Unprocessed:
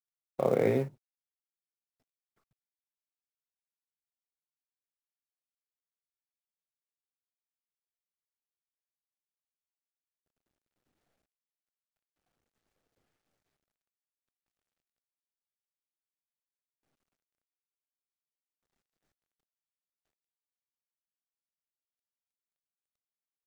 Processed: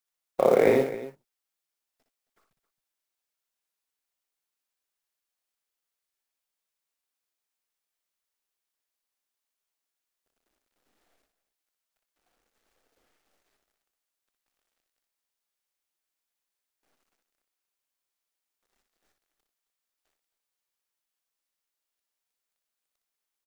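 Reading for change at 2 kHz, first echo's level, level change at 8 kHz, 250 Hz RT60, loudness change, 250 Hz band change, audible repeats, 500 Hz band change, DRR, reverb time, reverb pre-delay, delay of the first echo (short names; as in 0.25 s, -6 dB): +9.0 dB, -6.5 dB, +9.5 dB, none, +6.5 dB, +4.5 dB, 2, +7.5 dB, none, none, none, 61 ms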